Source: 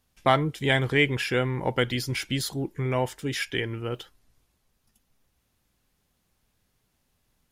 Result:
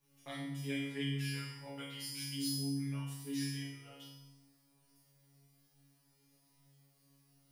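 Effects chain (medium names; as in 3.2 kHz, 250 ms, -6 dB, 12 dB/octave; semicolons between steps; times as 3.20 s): added noise brown -50 dBFS; tilt EQ +4 dB/octave; feedback comb 69 Hz, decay 0.31 s, harmonics all, mix 90%; in parallel at +2 dB: compression, threshold -44 dBFS, peak gain reduction 21 dB; on the sum: peaking EQ 150 Hz +7 dB 0.67 oct; feedback comb 140 Hz, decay 0.8 s, harmonics all, mix 100%; FDN reverb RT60 1 s, low-frequency decay 1.4×, high-frequency decay 0.85×, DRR 2 dB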